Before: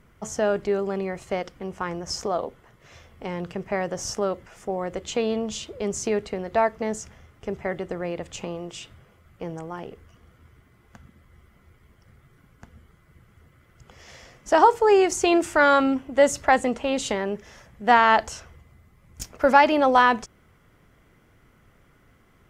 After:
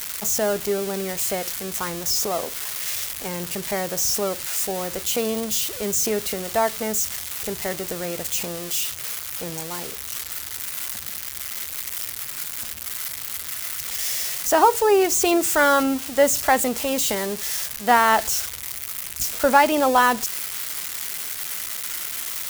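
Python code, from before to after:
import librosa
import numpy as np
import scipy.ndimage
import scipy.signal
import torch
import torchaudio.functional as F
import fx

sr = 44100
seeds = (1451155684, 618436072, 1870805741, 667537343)

y = x + 0.5 * 10.0 ** (-17.0 / 20.0) * np.diff(np.sign(x), prepend=np.sign(x[:1]))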